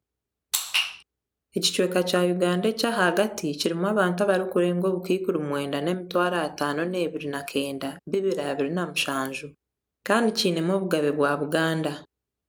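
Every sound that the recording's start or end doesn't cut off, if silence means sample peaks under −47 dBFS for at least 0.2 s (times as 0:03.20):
0:00.53–0:01.02
0:01.54–0:09.52
0:10.06–0:12.05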